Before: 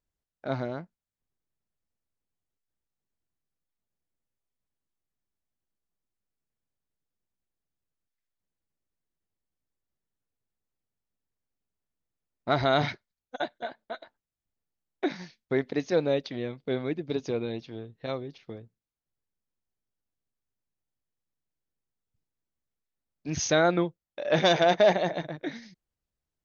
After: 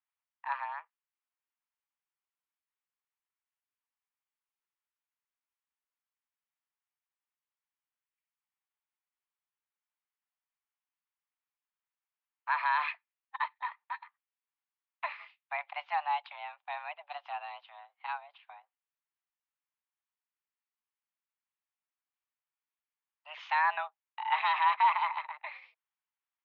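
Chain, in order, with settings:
brickwall limiter −14.5 dBFS, peak gain reduction 4.5 dB
single-sideband voice off tune +300 Hz 590–2,900 Hz

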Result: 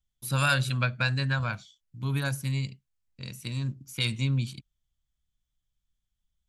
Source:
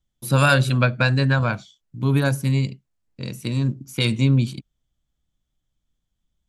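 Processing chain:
parametric band 370 Hz −11 dB 2.6 octaves
level −4 dB

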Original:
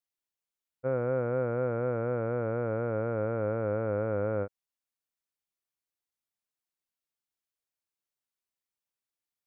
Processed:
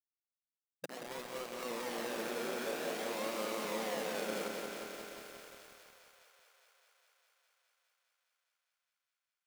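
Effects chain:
compressor on every frequency bin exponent 0.6
0:00.85–0:01.63: downward expander −16 dBFS
brickwall limiter −26 dBFS, peak gain reduction 7 dB
downward compressor 3 to 1, threshold −41 dBFS, peak gain reduction 8 dB
sample-and-hold swept by an LFO 36×, swing 60% 0.51 Hz
flanger 0.26 Hz, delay 3.9 ms, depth 5.5 ms, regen −40%
bit reduction 8 bits
linear-phase brick-wall high-pass 160 Hz
feedback echo with a high-pass in the loop 205 ms, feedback 82%, high-pass 280 Hz, level −8.5 dB
feedback echo at a low word length 178 ms, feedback 80%, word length 10 bits, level −5 dB
level +4.5 dB

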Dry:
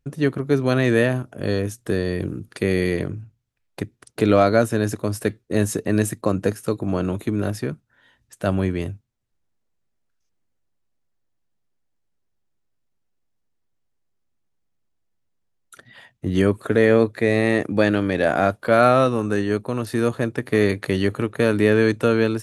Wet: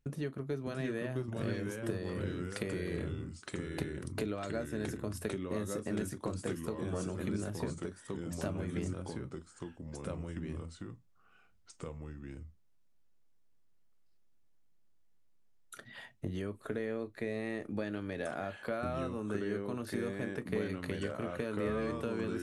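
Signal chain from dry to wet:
downward compressor 6 to 1, threshold −32 dBFS, peak gain reduction 20 dB
convolution reverb, pre-delay 5 ms, DRR 11.5 dB
delay with pitch and tempo change per echo 602 ms, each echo −2 semitones, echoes 2
level −4 dB

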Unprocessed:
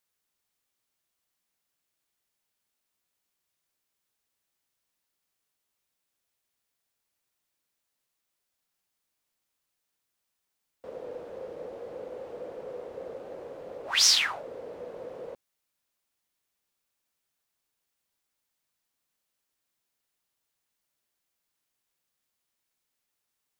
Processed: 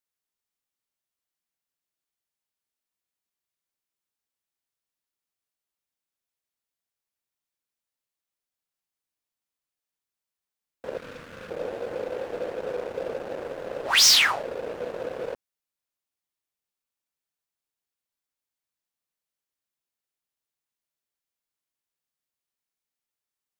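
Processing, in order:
leveller curve on the samples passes 3
0:10.97–0:11.50: flat-topped bell 540 Hz −13.5 dB
level −2.5 dB

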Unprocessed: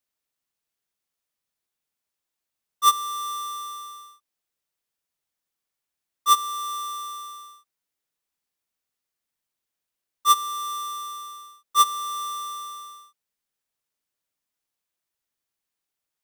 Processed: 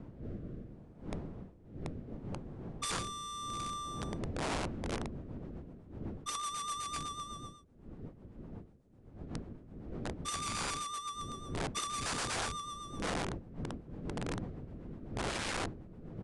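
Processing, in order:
wind on the microphone 250 Hz −30 dBFS
soft clipping −19.5 dBFS, distortion −7 dB
rotating-speaker cabinet horn 0.7 Hz, later 8 Hz, at 0:04.42
wrap-around overflow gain 27.5 dB
downsampling to 22,050 Hz
level −3 dB

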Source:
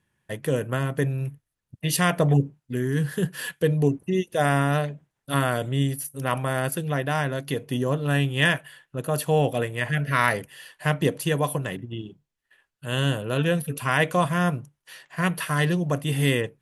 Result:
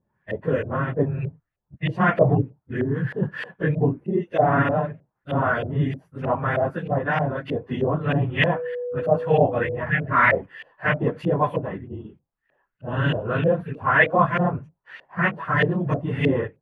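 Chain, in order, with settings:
random phases in long frames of 50 ms
auto-filter low-pass saw up 3.2 Hz 550–2,500 Hz
0:08.54–0:09.76: steady tone 490 Hz −26 dBFS

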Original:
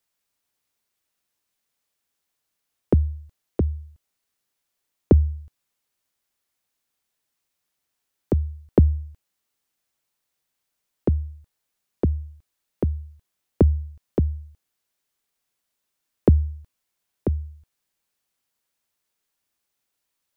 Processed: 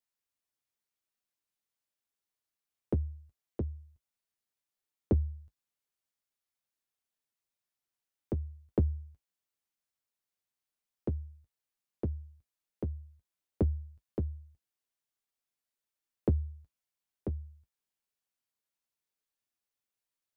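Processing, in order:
flanger 0.26 Hz, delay 8.6 ms, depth 1.3 ms, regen −38%
level −8.5 dB

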